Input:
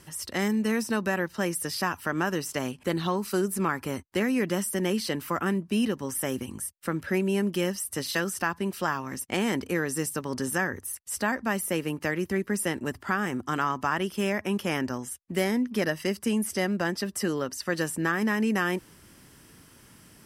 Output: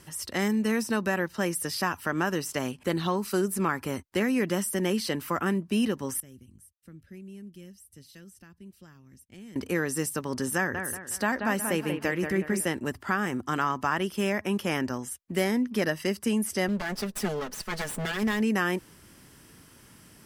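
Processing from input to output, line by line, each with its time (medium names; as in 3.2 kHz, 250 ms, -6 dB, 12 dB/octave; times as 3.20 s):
6.20–9.56 s: amplifier tone stack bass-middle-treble 10-0-1
10.56–12.65 s: bucket-brigade echo 183 ms, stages 4096, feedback 39%, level -6.5 dB
16.68–18.41 s: comb filter that takes the minimum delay 4.7 ms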